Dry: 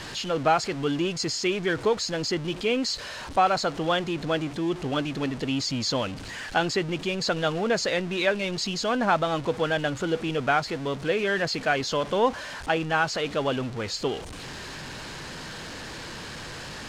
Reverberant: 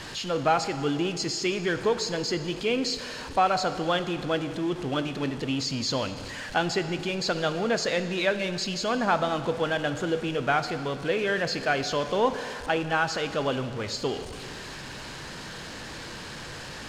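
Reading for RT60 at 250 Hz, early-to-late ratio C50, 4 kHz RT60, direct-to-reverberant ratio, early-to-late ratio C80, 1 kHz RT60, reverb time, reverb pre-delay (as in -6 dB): 2.5 s, 11.0 dB, 2.1 s, 10.0 dB, 12.0 dB, 2.1 s, 2.2 s, 18 ms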